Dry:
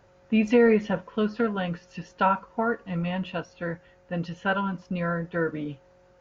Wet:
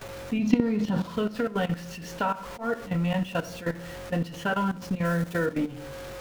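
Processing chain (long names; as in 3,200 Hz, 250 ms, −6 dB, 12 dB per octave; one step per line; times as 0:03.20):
converter with a step at zero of −37.5 dBFS
downward compressor 8 to 1, threshold −22 dBFS, peak gain reduction 8.5 dB
0:00.39–0:01.16: octave-band graphic EQ 125/250/500/1,000/2,000/4,000 Hz +8/+9/−5/+6/−5/+9 dB
rectangular room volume 72 cubic metres, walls mixed, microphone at 0.32 metres
output level in coarse steps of 14 dB
0:02.28–0:02.80: volume swells 123 ms
0:05.05–0:05.46: high-shelf EQ 5,500 Hz +9.5 dB
level +3 dB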